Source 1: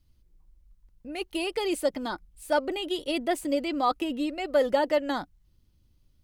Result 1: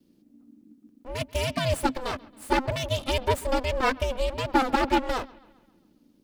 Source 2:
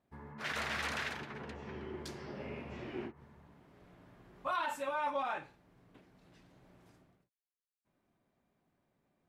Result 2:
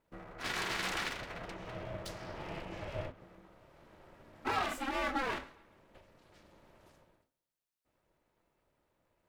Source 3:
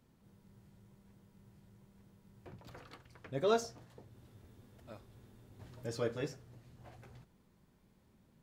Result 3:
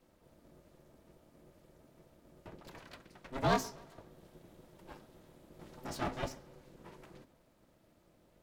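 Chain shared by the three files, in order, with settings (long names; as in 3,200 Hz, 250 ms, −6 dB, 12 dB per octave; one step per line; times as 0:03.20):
lower of the sound and its delayed copy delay 3 ms
ring modulation 260 Hz
bucket-brigade delay 136 ms, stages 4,096, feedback 51%, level −23 dB
level +6 dB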